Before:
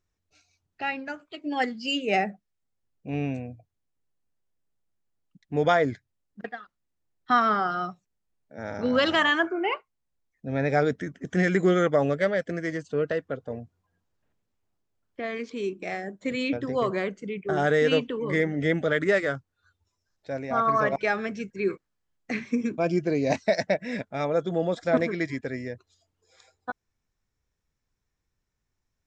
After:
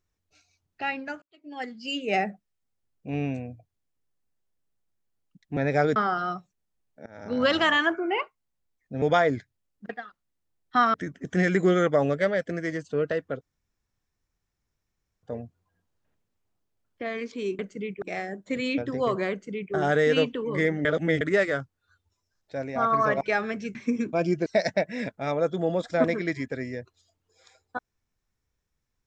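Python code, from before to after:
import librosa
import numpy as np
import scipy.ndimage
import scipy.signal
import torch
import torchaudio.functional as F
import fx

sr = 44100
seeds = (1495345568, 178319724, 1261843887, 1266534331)

y = fx.edit(x, sr, fx.fade_in_span(start_s=1.22, length_s=1.07),
    fx.swap(start_s=5.57, length_s=1.92, other_s=10.55, other_length_s=0.39),
    fx.fade_in_from(start_s=8.59, length_s=0.4, floor_db=-22.0),
    fx.insert_room_tone(at_s=13.41, length_s=1.82),
    fx.duplicate(start_s=17.06, length_s=0.43, to_s=15.77),
    fx.reverse_span(start_s=18.6, length_s=0.36),
    fx.cut(start_s=21.5, length_s=0.9),
    fx.cut(start_s=23.11, length_s=0.28), tone=tone)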